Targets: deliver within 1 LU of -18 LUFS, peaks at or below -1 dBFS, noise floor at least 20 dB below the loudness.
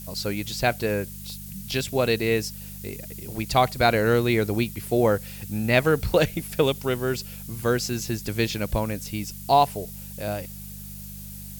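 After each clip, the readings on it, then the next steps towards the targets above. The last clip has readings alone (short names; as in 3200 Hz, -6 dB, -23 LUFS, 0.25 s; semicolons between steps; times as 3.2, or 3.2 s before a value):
hum 50 Hz; harmonics up to 200 Hz; hum level -39 dBFS; noise floor -39 dBFS; noise floor target -45 dBFS; loudness -24.5 LUFS; peak -6.5 dBFS; loudness target -18.0 LUFS
-> de-hum 50 Hz, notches 4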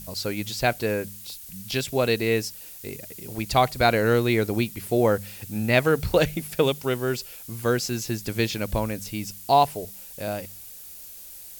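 hum none; noise floor -43 dBFS; noise floor target -45 dBFS
-> noise print and reduce 6 dB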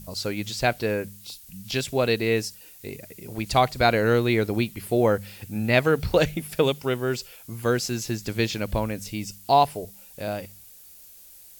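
noise floor -48 dBFS; loudness -24.5 LUFS; peak -6.0 dBFS; loudness target -18.0 LUFS
-> gain +6.5 dB; limiter -1 dBFS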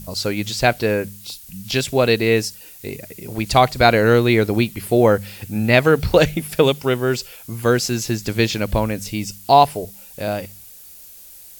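loudness -18.5 LUFS; peak -1.0 dBFS; noise floor -42 dBFS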